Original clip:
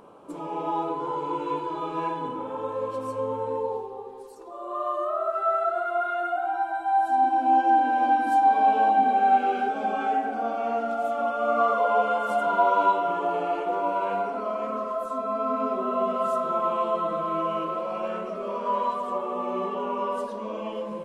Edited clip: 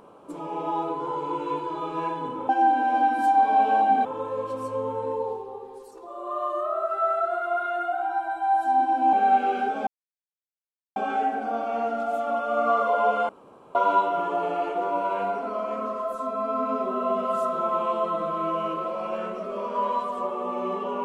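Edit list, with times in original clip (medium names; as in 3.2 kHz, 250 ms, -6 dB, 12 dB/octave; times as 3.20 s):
7.57–9.13 s: move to 2.49 s
9.87 s: insert silence 1.09 s
12.20–12.66 s: room tone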